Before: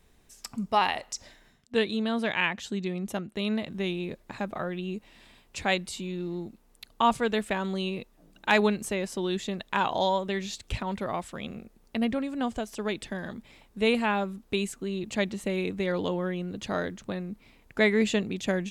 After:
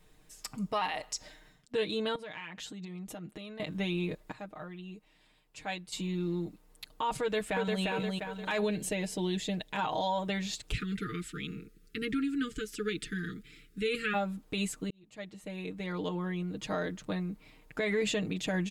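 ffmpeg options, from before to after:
ffmpeg -i in.wav -filter_complex "[0:a]asettb=1/sr,asplit=3[link_01][link_02][link_03];[link_01]atrim=end=2.154[link_04];[link_02]atrim=start=2.15:end=3.6,asetpts=PTS-STARTPTS,afade=type=in:duration=0.004:curve=qsin,afade=type=out:start_time=1.446:duration=0.004:curve=qsin,acompressor=threshold=-38dB:ratio=10:attack=3.2:release=140:knee=1:detection=peak[link_05];[link_03]atrim=start=3.596[link_06];[link_04][link_05]acrossfade=duration=0.004:curve1=hsin:curve2=qsin[link_07];[link_07][link_06]acrossfade=duration=0.004:curve1=qsin:curve2=hsin,asplit=2[link_08][link_09];[link_09]afade=type=in:start_time=7.21:duration=0.01,afade=type=out:start_time=7.83:duration=0.01,aecho=0:1:350|700|1050|1400|1750:0.707946|0.283178|0.113271|0.0453085|0.0181234[link_10];[link_08][link_10]amix=inputs=2:normalize=0,asettb=1/sr,asplit=3[link_11][link_12][link_13];[link_11]atrim=end=8.614[link_14];[link_12]atrim=start=8.61:end=9.79,asetpts=PTS-STARTPTS,afade=type=in:duration=0.004:curve=qsin,afade=type=out:start_time=1.176:duration=0.004:curve=qsin,equalizer=frequency=1200:width=2.5:gain=-11[link_15];[link_13]atrim=start=9.786[link_16];[link_14][link_15]acrossfade=duration=0.004:curve1=hsin:curve2=qsin[link_17];[link_17][link_16]acrossfade=duration=0.004:curve1=qsin:curve2=hsin,asplit=3[link_18][link_19][link_20];[link_18]afade=type=out:start_time=10.71:duration=0.02[link_21];[link_19]asuperstop=centerf=750:order=20:qfactor=0.97,afade=type=in:start_time=10.71:duration=0.02,afade=type=out:start_time=14.13:duration=0.02[link_22];[link_20]afade=type=in:start_time=14.13:duration=0.02[link_23];[link_21][link_22][link_23]amix=inputs=3:normalize=0,asplit=4[link_24][link_25][link_26][link_27];[link_24]atrim=end=4.322[link_28];[link_25]atrim=start=4.318:end=5.922,asetpts=PTS-STARTPTS,volume=-11dB[link_29];[link_26]atrim=start=5.918:end=14.9,asetpts=PTS-STARTPTS,afade=type=out:start_time=8.978:duration=0.004:curve=hsin[link_30];[link_27]atrim=start=14.9,asetpts=PTS-STARTPTS,afade=type=in:duration=3.01:curve=qsin[link_31];[link_28][link_29]acrossfade=duration=0.004:curve1=hsin:curve2=hsin[link_32];[link_30][link_31]concat=n=2:v=0:a=1[link_33];[link_32][link_33]acrossfade=duration=0.004:curve1=hsin:curve2=hsin,bandreject=frequency=5900:width=25,aecho=1:1:6.5:0.79,alimiter=limit=-20.5dB:level=0:latency=1:release=58,volume=-2dB" out.wav

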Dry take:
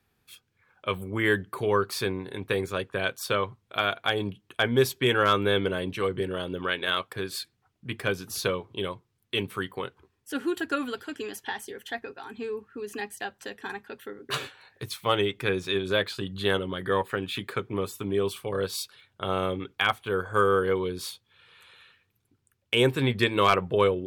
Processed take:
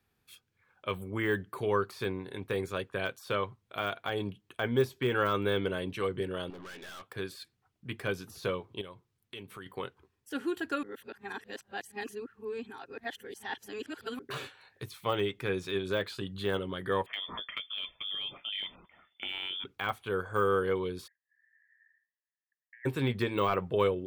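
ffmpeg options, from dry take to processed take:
ffmpeg -i in.wav -filter_complex "[0:a]asettb=1/sr,asplit=3[link_01][link_02][link_03];[link_01]atrim=end=6.504[link_04];[link_02]atrim=start=6.5:end=7.11,asetpts=PTS-STARTPTS,afade=type=in:duration=0.004:curve=qsin,afade=type=out:start_time=0.606:duration=0.004:curve=qsin,aeval=exprs='(tanh(89.1*val(0)+0.2)-tanh(0.2))/89.1':channel_layout=same[link_05];[link_03]atrim=start=7.106[link_06];[link_04][link_05]acrossfade=duration=0.004:curve1=hsin:curve2=qsin[link_07];[link_07][link_06]acrossfade=duration=0.004:curve1=qsin:curve2=hsin,asettb=1/sr,asplit=3[link_08][link_09][link_10];[link_08]atrim=end=8.814[link_11];[link_09]atrim=start=8.81:end=9.66,asetpts=PTS-STARTPTS,afade=type=in:duration=0.004:curve=qsin,afade=type=out:start_time=0.846:duration=0.004:curve=qsin,acompressor=threshold=-41dB:ratio=2.5:attack=3.2:release=140:knee=1:detection=peak[link_12];[link_10]atrim=start=9.656[link_13];[link_11][link_12]acrossfade=duration=0.004:curve1=hsin:curve2=qsin[link_14];[link_14][link_13]acrossfade=duration=0.004:curve1=qsin:curve2=hsin,asettb=1/sr,asplit=3[link_15][link_16][link_17];[link_15]atrim=end=17.064[link_18];[link_16]atrim=start=17.06:end=19.64,asetpts=PTS-STARTPTS,afade=type=in:duration=0.004:curve=qsin,afade=type=out:start_time=2.576:duration=0.004:curve=qsin,lowpass=frequency=3100:width_type=q:width=0.5098,lowpass=frequency=3100:width_type=q:width=0.6013,lowpass=frequency=3100:width_type=q:width=0.9,lowpass=frequency=3100:width_type=q:width=2.563,afreqshift=-3600[link_19];[link_17]atrim=start=19.636[link_20];[link_18][link_19]acrossfade=duration=0.004:curve1=hsin:curve2=qsin[link_21];[link_21][link_20]acrossfade=duration=0.004:curve1=qsin:curve2=hsin,asplit=3[link_22][link_23][link_24];[link_22]afade=type=out:start_time=21.06:duration=0.02[link_25];[link_23]asuperpass=centerf=1800:order=8:qfactor=5.3,afade=type=in:start_time=21.06:duration=0.02,afade=type=out:start_time=22.85:duration=0.02[link_26];[link_24]afade=type=in:start_time=22.85:duration=0.02[link_27];[link_25][link_26][link_27]amix=inputs=3:normalize=0,asplit=3[link_28][link_29][link_30];[link_28]atrim=end=10.832[link_31];[link_29]atrim=start=10.828:end=14.192,asetpts=PTS-STARTPTS,areverse[link_32];[link_30]atrim=start=14.188[link_33];[link_31][link_32]acrossfade=duration=0.004:curve1=hsin:curve2=hsin[link_34];[link_34][link_33]acrossfade=duration=0.004:curve1=hsin:curve2=hsin,deesser=0.9,volume=-4.5dB" out.wav

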